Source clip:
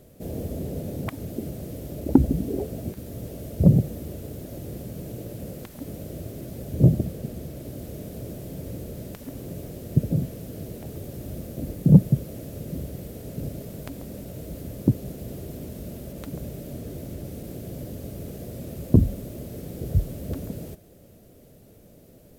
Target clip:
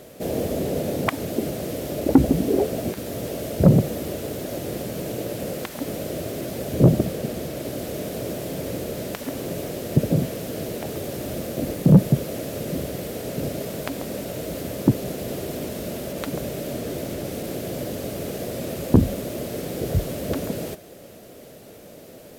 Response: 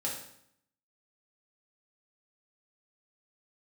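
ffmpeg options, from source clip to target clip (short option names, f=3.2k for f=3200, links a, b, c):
-filter_complex "[0:a]asplit=2[a][b];[b]highpass=f=720:p=1,volume=21dB,asoftclip=type=tanh:threshold=-1dB[c];[a][c]amix=inputs=2:normalize=0,lowpass=f=5.1k:p=1,volume=-6dB"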